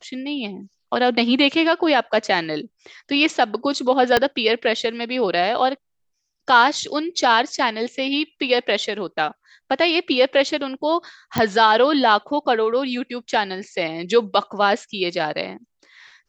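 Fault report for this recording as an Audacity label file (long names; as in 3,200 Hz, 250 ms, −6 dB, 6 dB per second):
4.170000	4.170000	click −3 dBFS
11.380000	11.380000	click −6 dBFS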